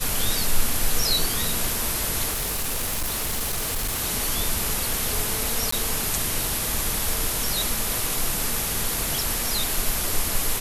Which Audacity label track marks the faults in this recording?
2.300000	4.010000	clipping −22.5 dBFS
5.710000	5.720000	drop-out 14 ms

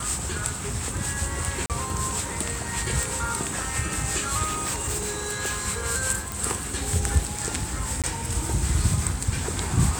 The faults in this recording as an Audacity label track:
1.660000	1.700000	drop-out 38 ms
3.030000	3.030000	click
4.430000	5.630000	clipping −23.5 dBFS
6.320000	6.320000	click
8.020000	8.040000	drop-out 17 ms

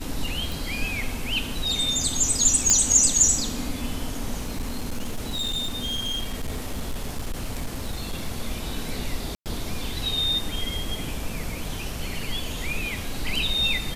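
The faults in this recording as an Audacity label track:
0.520000	0.520000	click
2.700000	2.700000	click −5 dBFS
4.370000	8.270000	clipping −24 dBFS
9.350000	9.460000	drop-out 108 ms

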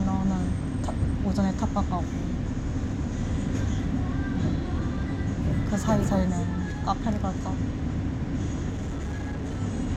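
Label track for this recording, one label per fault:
8.690000	9.620000	clipping −27.5 dBFS

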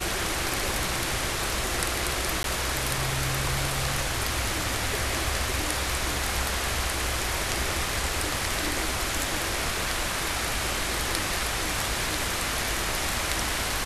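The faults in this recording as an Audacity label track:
2.430000	2.440000	drop-out 12 ms

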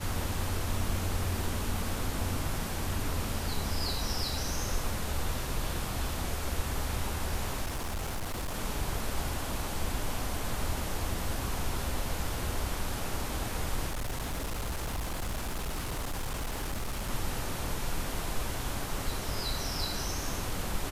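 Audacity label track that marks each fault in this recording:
7.660000	8.560000	clipping −30.5 dBFS
13.880000	17.100000	clipping −30 dBFS

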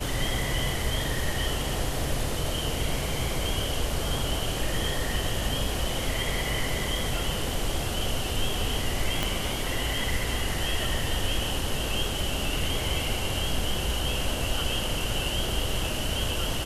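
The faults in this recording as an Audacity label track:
9.230000	9.230000	click −11 dBFS

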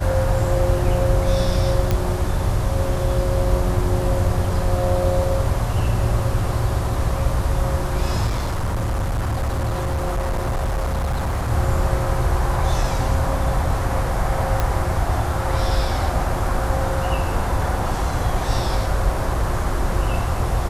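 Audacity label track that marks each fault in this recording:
1.910000	1.910000	click −7 dBFS
8.260000	11.500000	clipping −18.5 dBFS
14.600000	14.600000	click −7 dBFS

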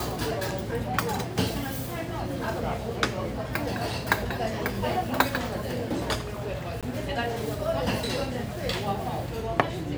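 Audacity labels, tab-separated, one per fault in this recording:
6.810000	6.830000	drop-out 17 ms

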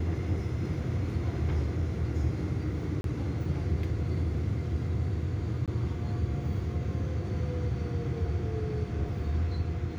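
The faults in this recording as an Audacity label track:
3.010000	3.040000	drop-out 32 ms
5.660000	5.680000	drop-out 17 ms

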